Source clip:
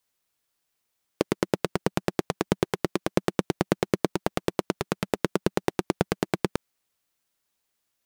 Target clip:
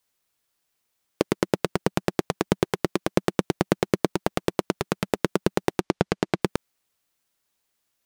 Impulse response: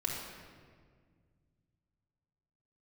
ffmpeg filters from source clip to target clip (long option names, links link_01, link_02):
-filter_complex "[0:a]asettb=1/sr,asplit=3[link_01][link_02][link_03];[link_01]atrim=end=5.804[link_04];[link_02]atrim=start=5.8:end=6.42,asetpts=PTS-STARTPTS,afade=type=in:duration=0.004:curve=qsin,afade=type=out:start_time=0.616:duration=0.004:curve=qsin,lowpass=6700[link_05];[link_03]atrim=start=6.416[link_06];[link_04][link_05]acrossfade=duration=0.004:curve1=hsin:curve2=qsin[link_07];[link_07][link_06]acrossfade=duration=0.004:curve1=qsin:curve2=hsin,volume=2dB"